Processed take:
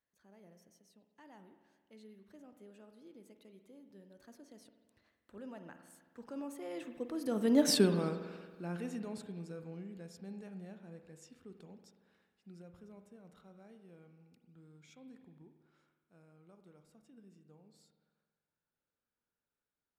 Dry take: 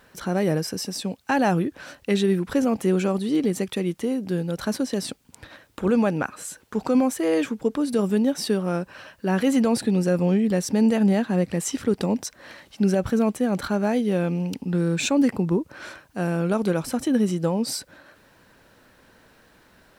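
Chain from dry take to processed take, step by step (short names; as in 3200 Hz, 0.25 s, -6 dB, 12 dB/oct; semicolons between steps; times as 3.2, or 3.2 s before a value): Doppler pass-by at 7.7, 29 m/s, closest 2.8 m; spring tank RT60 1.5 s, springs 46 ms, chirp 55 ms, DRR 8 dB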